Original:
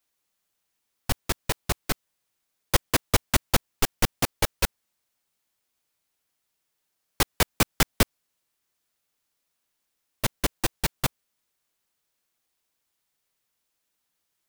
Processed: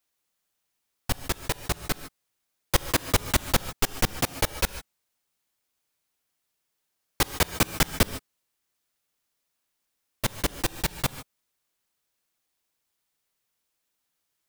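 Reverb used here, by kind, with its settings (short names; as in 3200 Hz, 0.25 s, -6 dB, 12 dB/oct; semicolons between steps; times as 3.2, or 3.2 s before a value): non-linear reverb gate 0.17 s rising, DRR 12 dB; gain -1 dB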